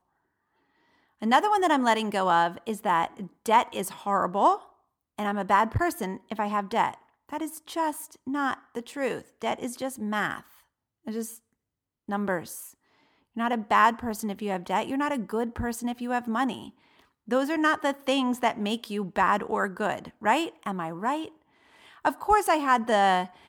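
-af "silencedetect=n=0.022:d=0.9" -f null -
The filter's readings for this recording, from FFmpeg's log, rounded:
silence_start: 0.00
silence_end: 1.22 | silence_duration: 1.22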